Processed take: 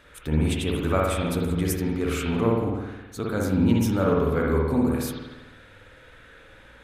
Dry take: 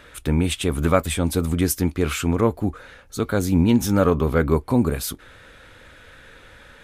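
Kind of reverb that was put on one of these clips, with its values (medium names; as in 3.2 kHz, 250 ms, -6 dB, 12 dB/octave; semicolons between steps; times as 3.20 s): spring tank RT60 1.1 s, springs 52 ms, chirp 35 ms, DRR -2.5 dB; trim -7.5 dB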